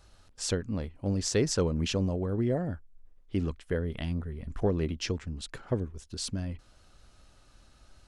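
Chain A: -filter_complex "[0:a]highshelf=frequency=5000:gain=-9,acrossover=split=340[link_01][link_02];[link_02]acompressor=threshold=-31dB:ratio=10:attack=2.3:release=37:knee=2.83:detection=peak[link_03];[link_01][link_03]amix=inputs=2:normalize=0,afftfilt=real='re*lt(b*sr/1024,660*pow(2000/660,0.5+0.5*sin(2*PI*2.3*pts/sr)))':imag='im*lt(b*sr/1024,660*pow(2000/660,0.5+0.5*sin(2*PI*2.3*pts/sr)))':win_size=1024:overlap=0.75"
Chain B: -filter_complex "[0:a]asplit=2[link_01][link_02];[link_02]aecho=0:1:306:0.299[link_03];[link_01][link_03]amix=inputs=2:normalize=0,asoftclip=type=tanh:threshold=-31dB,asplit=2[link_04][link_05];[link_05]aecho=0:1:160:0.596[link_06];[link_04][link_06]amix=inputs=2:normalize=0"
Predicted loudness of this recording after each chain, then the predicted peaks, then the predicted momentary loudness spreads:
−33.5, −36.0 LKFS; −15.5, −27.0 dBFS; 10, 8 LU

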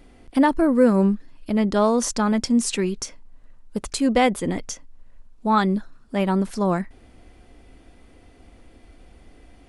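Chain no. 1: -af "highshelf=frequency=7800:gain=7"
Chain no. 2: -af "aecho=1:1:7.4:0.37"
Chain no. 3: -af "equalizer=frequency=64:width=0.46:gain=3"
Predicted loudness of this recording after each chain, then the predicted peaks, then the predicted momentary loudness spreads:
−21.5, −21.5, −21.0 LKFS; −5.5, −4.5, −5.5 dBFS; 13, 16, 14 LU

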